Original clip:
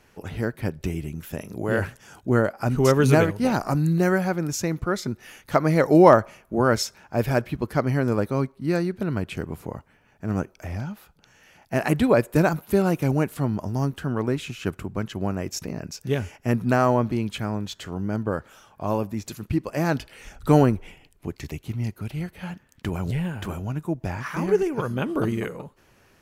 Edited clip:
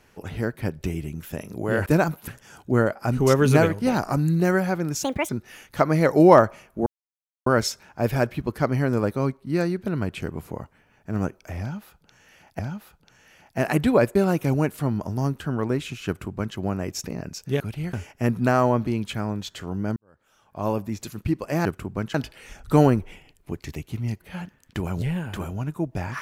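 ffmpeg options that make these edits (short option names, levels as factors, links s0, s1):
-filter_complex "[0:a]asplit=14[s0][s1][s2][s3][s4][s5][s6][s7][s8][s9][s10][s11][s12][s13];[s0]atrim=end=1.862[s14];[s1]atrim=start=12.308:end=12.732[s15];[s2]atrim=start=1.858:end=4.614[s16];[s3]atrim=start=4.61:end=5.04,asetpts=PTS-STARTPTS,asetrate=72324,aresample=44100[s17];[s4]atrim=start=5.036:end=6.61,asetpts=PTS-STARTPTS,afade=t=out:st=1.57:d=0.004:c=hsin,apad=pad_dur=0.6[s18];[s5]atrim=start=6.61:end=11.742,asetpts=PTS-STARTPTS,afade=t=in:d=0.004:c=hsin[s19];[s6]atrim=start=10.748:end=12.312[s20];[s7]atrim=start=12.728:end=16.182[s21];[s8]atrim=start=21.968:end=22.302[s22];[s9]atrim=start=16.178:end=18.21,asetpts=PTS-STARTPTS,afade=t=out:st=2.028:d=0.004:c=hsin[s23];[s10]atrim=start=18.21:end=19.902,asetpts=PTS-STARTPTS,afade=t=in:d=0.73:c=qua[s24];[s11]atrim=start=14.648:end=15.142[s25];[s12]atrim=start=19.898:end=21.972[s26];[s13]atrim=start=22.298[s27];[s14][s15]acrossfade=d=0.004:c1=hsin:c2=hsin[s28];[s28][s16]acrossfade=d=0.004:c1=hsin:c2=hsin[s29];[s29][s17]acrossfade=d=0.004:c1=hsin:c2=hsin[s30];[s18][s19]concat=n=2:v=0:a=1[s31];[s30][s31]acrossfade=d=0.004:c1=hsin:c2=hsin[s32];[s32][s20]acrossfade=d=0.004:c1=hsin:c2=hsin[s33];[s33][s21]acrossfade=d=0.004:c1=hsin:c2=hsin[s34];[s34][s22]acrossfade=d=0.004:c1=hsin:c2=hsin[s35];[s23][s24]concat=n=2:v=0:a=1[s36];[s35][s36]acrossfade=d=0.004:c1=hsin:c2=hsin[s37];[s37][s25]acrossfade=d=0.004:c1=hsin:c2=hsin[s38];[s38][s26]acrossfade=d=0.004:c1=hsin:c2=hsin[s39];[s39][s27]acrossfade=d=0.004:c1=hsin:c2=hsin"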